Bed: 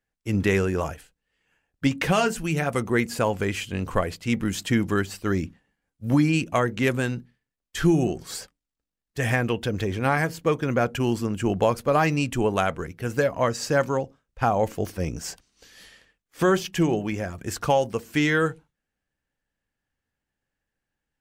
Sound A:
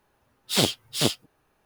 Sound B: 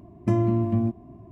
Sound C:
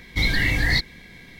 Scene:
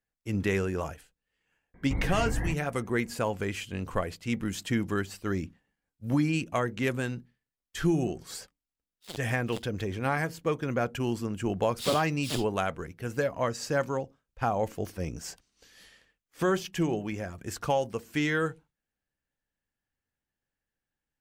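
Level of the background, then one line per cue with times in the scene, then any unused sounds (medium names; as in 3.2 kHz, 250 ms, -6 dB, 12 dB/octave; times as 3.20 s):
bed -6 dB
1.74 s: add C -7 dB + low-pass 1.3 kHz 24 dB/octave
8.51 s: add A -14.5 dB + power-law waveshaper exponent 2
11.29 s: add A -11 dB
not used: B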